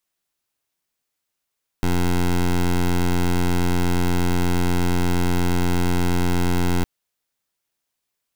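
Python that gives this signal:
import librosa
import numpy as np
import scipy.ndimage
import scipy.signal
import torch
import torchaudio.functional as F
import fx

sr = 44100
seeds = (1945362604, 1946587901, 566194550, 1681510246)

y = fx.pulse(sr, length_s=5.01, hz=88.4, level_db=-18.5, duty_pct=15)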